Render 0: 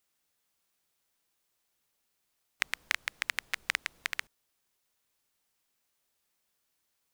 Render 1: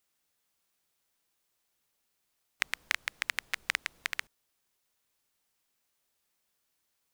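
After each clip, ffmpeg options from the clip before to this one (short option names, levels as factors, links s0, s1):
-af anull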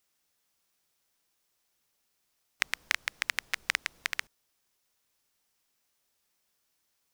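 -af "equalizer=f=5500:t=o:w=0.4:g=3,volume=1.19"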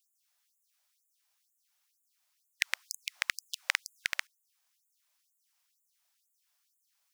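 -af "afftfilt=real='re*gte(b*sr/1024,540*pow(6800/540,0.5+0.5*sin(2*PI*2.1*pts/sr)))':imag='im*gte(b*sr/1024,540*pow(6800/540,0.5+0.5*sin(2*PI*2.1*pts/sr)))':win_size=1024:overlap=0.75"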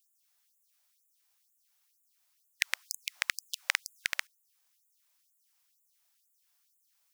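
-af "highshelf=f=9400:g=5.5"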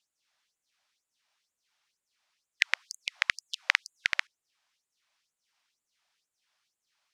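-af "lowpass=4100,volume=1.88"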